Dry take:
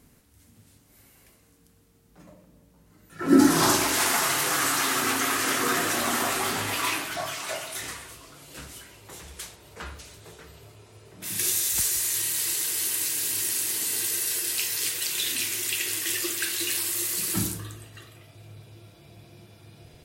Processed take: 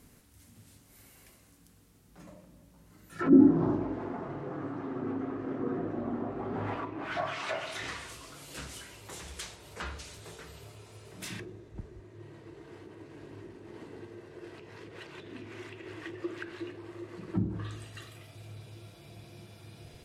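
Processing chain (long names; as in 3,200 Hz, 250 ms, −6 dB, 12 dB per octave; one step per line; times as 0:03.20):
hum removal 76.15 Hz, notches 12
treble cut that deepens with the level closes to 410 Hz, closed at −23 dBFS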